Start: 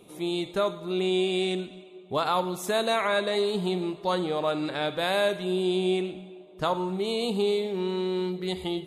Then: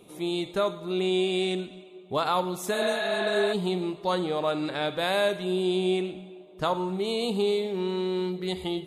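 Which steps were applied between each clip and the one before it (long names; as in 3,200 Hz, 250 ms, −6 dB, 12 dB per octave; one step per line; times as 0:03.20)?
healed spectral selection 0:02.77–0:03.50, 490–4,900 Hz before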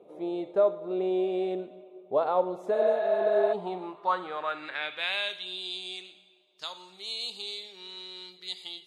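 band-pass filter sweep 560 Hz → 4,800 Hz, 0:03.27–0:05.81
level +5.5 dB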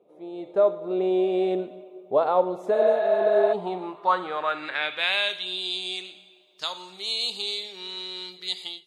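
automatic gain control gain up to 15 dB
level −7.5 dB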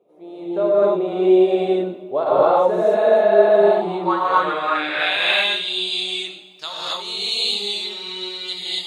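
reverb whose tail is shaped and stops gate 300 ms rising, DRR −8 dB
level −1 dB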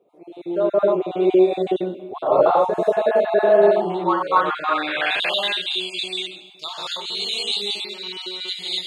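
time-frequency cells dropped at random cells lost 26%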